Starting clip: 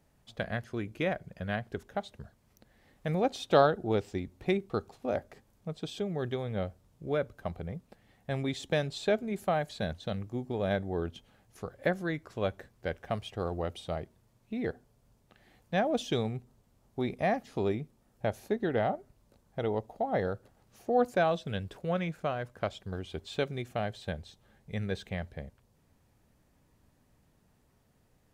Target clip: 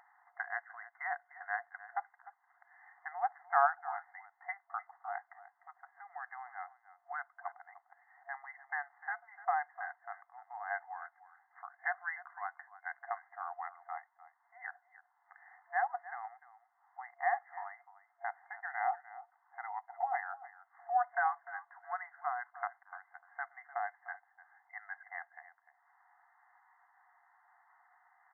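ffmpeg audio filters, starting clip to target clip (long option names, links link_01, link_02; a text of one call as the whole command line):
ffmpeg -i in.wav -af "aecho=1:1:300:0.15,acompressor=mode=upward:threshold=-45dB:ratio=2.5,afftfilt=real='re*between(b*sr/4096,690,2100)':imag='im*between(b*sr/4096,690,2100)':win_size=4096:overlap=0.75,volume=1dB" out.wav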